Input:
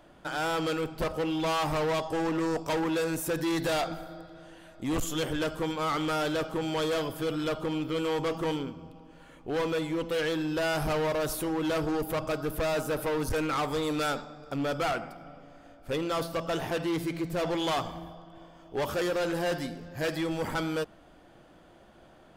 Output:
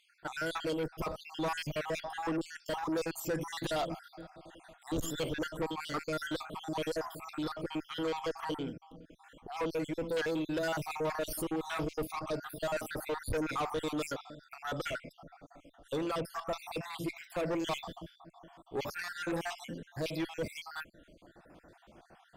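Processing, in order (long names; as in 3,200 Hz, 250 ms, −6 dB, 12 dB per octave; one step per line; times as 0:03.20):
time-frequency cells dropped at random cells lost 58%
tube saturation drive 28 dB, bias 0.25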